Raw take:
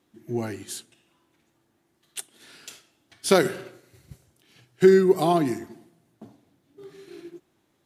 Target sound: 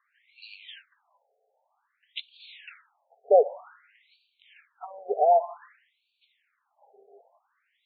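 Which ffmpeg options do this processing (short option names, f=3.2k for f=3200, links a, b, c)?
-af "asubboost=boost=5.5:cutoff=95,afftfilt=real='re*between(b*sr/1024,560*pow(3300/560,0.5+0.5*sin(2*PI*0.53*pts/sr))/1.41,560*pow(3300/560,0.5+0.5*sin(2*PI*0.53*pts/sr))*1.41)':imag='im*between(b*sr/1024,560*pow(3300/560,0.5+0.5*sin(2*PI*0.53*pts/sr))/1.41,560*pow(3300/560,0.5+0.5*sin(2*PI*0.53*pts/sr))*1.41)':win_size=1024:overlap=0.75,volume=6dB"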